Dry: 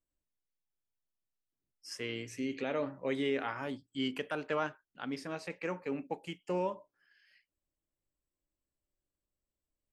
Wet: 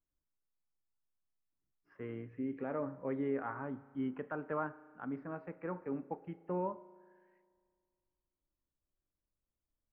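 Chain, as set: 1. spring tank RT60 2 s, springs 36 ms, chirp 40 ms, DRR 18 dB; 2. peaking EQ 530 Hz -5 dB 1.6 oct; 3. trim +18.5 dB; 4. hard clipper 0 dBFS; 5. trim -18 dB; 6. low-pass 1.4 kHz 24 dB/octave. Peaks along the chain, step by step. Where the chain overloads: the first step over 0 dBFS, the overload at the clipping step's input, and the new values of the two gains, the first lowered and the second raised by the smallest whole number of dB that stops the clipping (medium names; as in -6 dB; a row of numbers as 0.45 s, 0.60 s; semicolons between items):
-20.0 dBFS, -22.0 dBFS, -3.5 dBFS, -3.5 dBFS, -21.5 dBFS, -23.5 dBFS; nothing clips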